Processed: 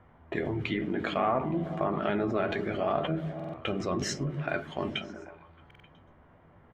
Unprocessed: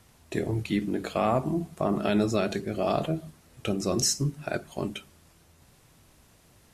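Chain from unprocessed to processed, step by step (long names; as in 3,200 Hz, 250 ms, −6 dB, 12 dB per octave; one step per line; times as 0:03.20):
flat-topped bell 6,500 Hz −15 dB
treble cut that deepens with the level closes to 2,200 Hz, closed at −22 dBFS
tilt shelving filter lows −5.5 dB, about 740 Hz
notch filter 2,600 Hz, Q 8
double-tracking delay 12 ms −8.5 dB
low-pass that shuts in the quiet parts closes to 980 Hz, open at −28 dBFS
in parallel at −2 dB: compressor whose output falls as the input rises −37 dBFS, ratio −1
on the sum: echo through a band-pass that steps 124 ms, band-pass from 160 Hz, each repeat 0.7 octaves, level −5 dB
buffer that repeats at 0:03.35/0:05.66, samples 2,048, times 3
level −3 dB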